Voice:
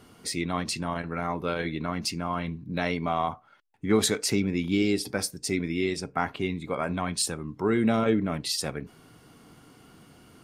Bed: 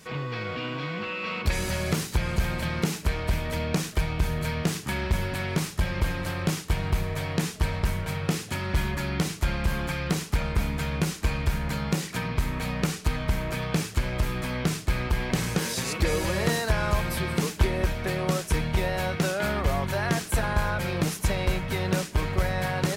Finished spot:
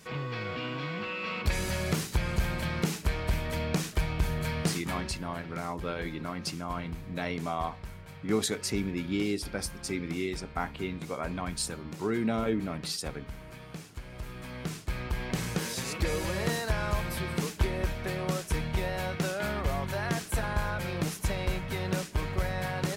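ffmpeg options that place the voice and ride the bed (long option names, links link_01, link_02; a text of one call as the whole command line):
ffmpeg -i stem1.wav -i stem2.wav -filter_complex "[0:a]adelay=4400,volume=-5.5dB[link_01];[1:a]volume=8.5dB,afade=type=out:start_time=4.76:duration=0.4:silence=0.211349,afade=type=in:start_time=14.06:duration=1.42:silence=0.266073[link_02];[link_01][link_02]amix=inputs=2:normalize=0" out.wav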